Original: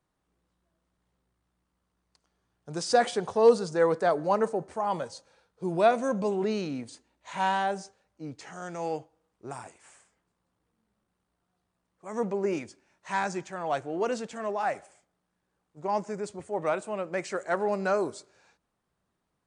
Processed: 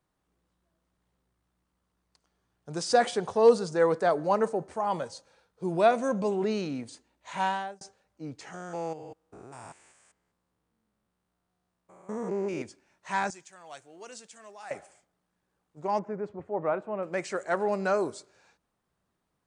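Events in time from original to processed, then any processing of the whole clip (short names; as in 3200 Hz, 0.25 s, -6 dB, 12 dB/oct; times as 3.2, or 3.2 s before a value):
7.4–7.81 fade out
8.54–12.62 stepped spectrum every 0.2 s
13.3–14.71 pre-emphasis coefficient 0.9
15.99–17.03 LPF 1500 Hz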